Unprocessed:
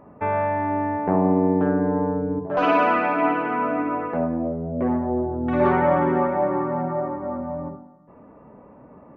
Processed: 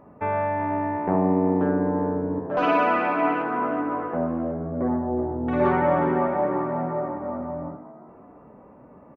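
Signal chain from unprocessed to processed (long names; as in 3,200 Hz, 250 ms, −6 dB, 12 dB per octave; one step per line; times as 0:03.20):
0:03.42–0:05.22: Savitzky-Golay smoothing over 41 samples
on a send: echo with shifted repeats 366 ms, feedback 37%, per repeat +65 Hz, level −14.5 dB
on the sum: level −2 dB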